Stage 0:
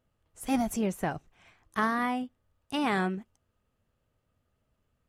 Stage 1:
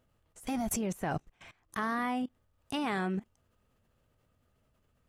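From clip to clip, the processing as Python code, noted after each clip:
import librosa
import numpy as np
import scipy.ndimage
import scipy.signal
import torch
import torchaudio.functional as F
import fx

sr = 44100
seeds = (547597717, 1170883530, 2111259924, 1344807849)

y = fx.level_steps(x, sr, step_db=20)
y = F.gain(torch.from_numpy(y), 8.0).numpy()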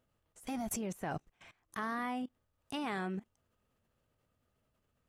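y = fx.low_shelf(x, sr, hz=100.0, db=-5.0)
y = F.gain(torch.from_numpy(y), -4.5).numpy()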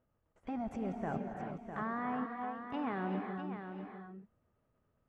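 y = scipy.signal.sosfilt(scipy.signal.butter(2, 1600.0, 'lowpass', fs=sr, output='sos'), x)
y = y + 10.0 ** (-8.0 / 20.0) * np.pad(y, (int(653 * sr / 1000.0), 0))[:len(y)]
y = fx.rev_gated(y, sr, seeds[0], gate_ms=420, shape='rising', drr_db=3.5)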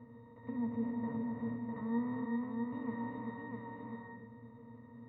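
y = fx.bin_compress(x, sr, power=0.4)
y = fx.octave_resonator(y, sr, note='A#', decay_s=0.2)
y = F.gain(torch.from_numpy(y), 6.5).numpy()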